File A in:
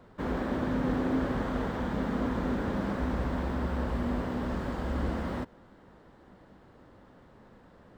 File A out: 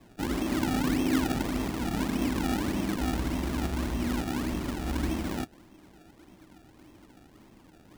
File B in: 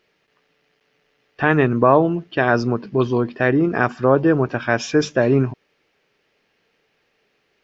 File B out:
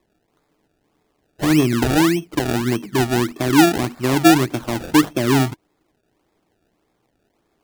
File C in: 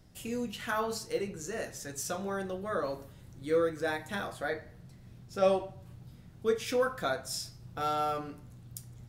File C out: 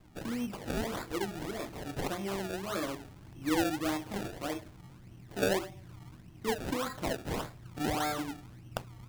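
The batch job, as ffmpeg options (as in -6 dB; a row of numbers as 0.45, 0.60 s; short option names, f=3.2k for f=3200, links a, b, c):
-filter_complex "[0:a]acrossover=split=330[a][b];[b]acompressor=threshold=-21dB:ratio=3[c];[a][c]amix=inputs=2:normalize=0,equalizer=f=315:t=o:w=0.33:g=10,equalizer=f=500:t=o:w=0.33:g=-10,equalizer=f=1.6k:t=o:w=0.33:g=-10,equalizer=f=10k:t=o:w=0.33:g=12,acrusher=samples=29:mix=1:aa=0.000001:lfo=1:lforange=29:lforate=1.7"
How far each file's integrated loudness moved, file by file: +1.5, +0.5, -2.0 LU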